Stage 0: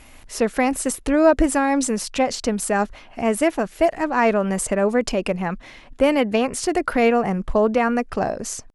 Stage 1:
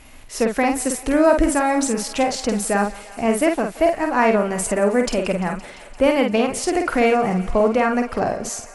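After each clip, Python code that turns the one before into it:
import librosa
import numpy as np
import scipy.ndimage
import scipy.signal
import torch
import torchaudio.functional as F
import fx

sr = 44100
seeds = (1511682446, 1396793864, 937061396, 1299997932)

y = fx.doubler(x, sr, ms=49.0, db=-5.0)
y = fx.echo_thinned(y, sr, ms=172, feedback_pct=83, hz=410.0, wet_db=-19.0)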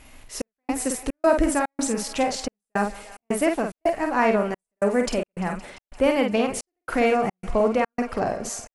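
y = fx.step_gate(x, sr, bpm=109, pattern='xxx..xxx.xxx.xx', floor_db=-60.0, edge_ms=4.5)
y = y * 10.0 ** (-3.5 / 20.0)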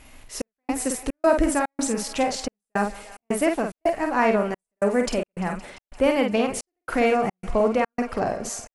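y = x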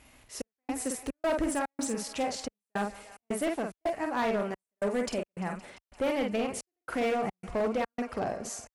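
y = scipy.signal.sosfilt(scipy.signal.butter(2, 45.0, 'highpass', fs=sr, output='sos'), x)
y = np.clip(y, -10.0 ** (-17.0 / 20.0), 10.0 ** (-17.0 / 20.0))
y = y * 10.0 ** (-7.0 / 20.0)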